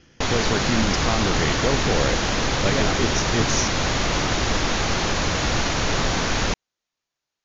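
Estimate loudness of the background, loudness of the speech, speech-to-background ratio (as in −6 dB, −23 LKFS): −22.5 LKFS, −26.0 LKFS, −3.5 dB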